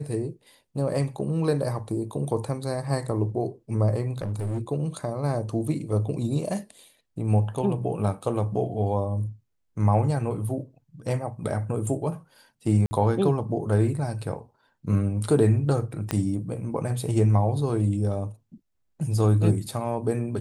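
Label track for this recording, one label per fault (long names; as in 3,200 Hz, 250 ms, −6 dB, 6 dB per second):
4.180000	4.610000	clipping −25 dBFS
12.860000	12.910000	drop-out 50 ms
16.110000	16.110000	click −11 dBFS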